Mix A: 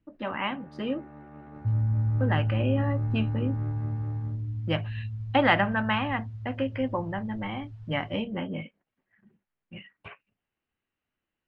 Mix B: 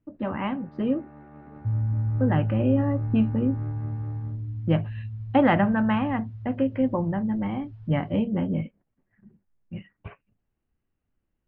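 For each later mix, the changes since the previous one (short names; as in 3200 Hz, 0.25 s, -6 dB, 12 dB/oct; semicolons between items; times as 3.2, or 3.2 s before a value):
speech: add tilt -3.5 dB/oct; master: add air absorption 120 m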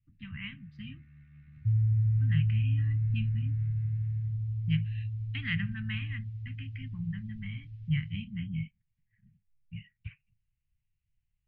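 master: add Chebyshev band-stop 140–2200 Hz, order 3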